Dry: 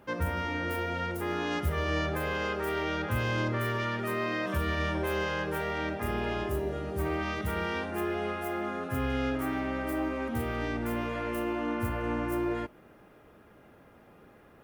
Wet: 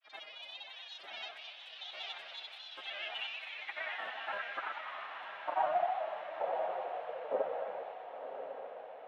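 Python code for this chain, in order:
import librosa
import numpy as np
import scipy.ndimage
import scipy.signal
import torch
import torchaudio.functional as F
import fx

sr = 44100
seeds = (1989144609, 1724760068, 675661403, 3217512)

y = fx.riaa(x, sr, side='playback')
y = fx.notch(y, sr, hz=4500.0, q=5.4)
y = fx.spec_gate(y, sr, threshold_db=-25, keep='weak')
y = fx.peak_eq(y, sr, hz=720.0, db=13.5, octaves=0.36)
y = fx.granulator(y, sr, seeds[0], grain_ms=100.0, per_s=20.0, spray_ms=100.0, spread_st=3)
y = fx.echo_wet_lowpass(y, sr, ms=220, feedback_pct=49, hz=710.0, wet_db=-14.5)
y = fx.stretch_vocoder(y, sr, factor=0.62)
y = fx.filter_sweep_bandpass(y, sr, from_hz=3800.0, to_hz=520.0, start_s=2.63, end_s=6.55, q=4.4)
y = fx.echo_diffused(y, sr, ms=1031, feedback_pct=56, wet_db=-8.0)
y = F.gain(torch.from_numpy(y), 12.0).numpy()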